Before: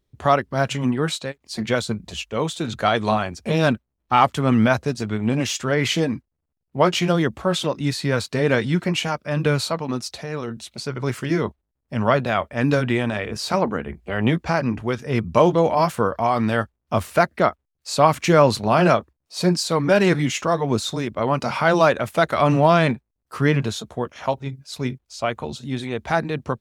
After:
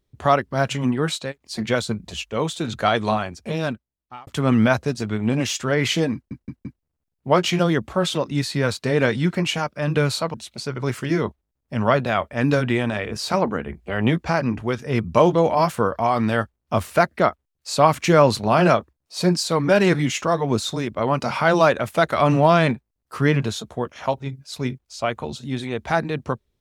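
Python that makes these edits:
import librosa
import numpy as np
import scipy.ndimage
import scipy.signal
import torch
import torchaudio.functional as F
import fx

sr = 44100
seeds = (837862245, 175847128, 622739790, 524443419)

y = fx.edit(x, sr, fx.fade_out_span(start_s=2.95, length_s=1.32),
    fx.stutter(start_s=6.14, slice_s=0.17, count=4),
    fx.cut(start_s=9.83, length_s=0.71), tone=tone)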